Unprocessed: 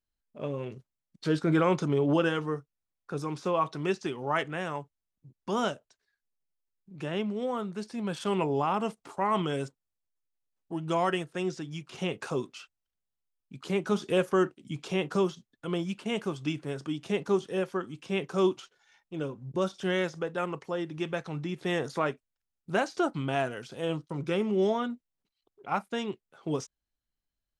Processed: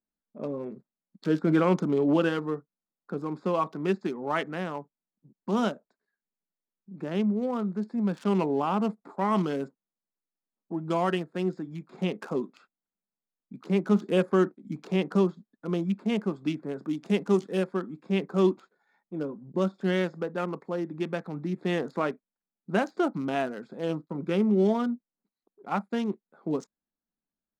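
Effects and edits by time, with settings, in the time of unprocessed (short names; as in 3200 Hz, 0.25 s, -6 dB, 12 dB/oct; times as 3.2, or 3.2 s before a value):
16.88–17.62 high shelf 5500 Hz -> 3100 Hz +10 dB
whole clip: Wiener smoothing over 15 samples; resonant low shelf 140 Hz -12 dB, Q 3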